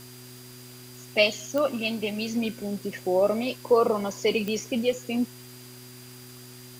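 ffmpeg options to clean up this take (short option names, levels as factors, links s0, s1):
-af "adeclick=t=4,bandreject=f=124.2:t=h:w=4,bandreject=f=248.4:t=h:w=4,bandreject=f=372.6:t=h:w=4,bandreject=f=4800:w=30,afwtdn=0.004"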